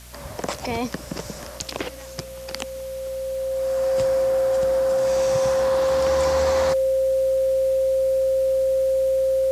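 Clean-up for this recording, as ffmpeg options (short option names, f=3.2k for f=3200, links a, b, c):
-af "adeclick=t=4,bandreject=f=60.4:t=h:w=4,bandreject=f=120.8:t=h:w=4,bandreject=f=181.2:t=h:w=4,bandreject=f=241.6:t=h:w=4,bandreject=f=530:w=30,afwtdn=0.0056"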